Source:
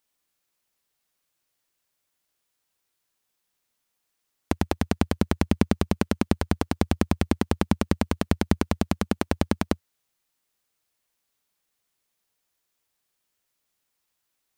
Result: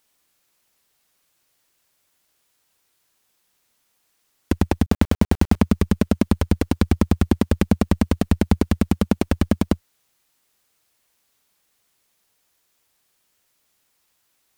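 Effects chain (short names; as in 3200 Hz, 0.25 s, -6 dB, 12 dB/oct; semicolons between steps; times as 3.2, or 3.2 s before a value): added harmonics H 5 -10 dB, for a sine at -4 dBFS; 4.86–5.56 requantised 6-bit, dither none; gain +1.5 dB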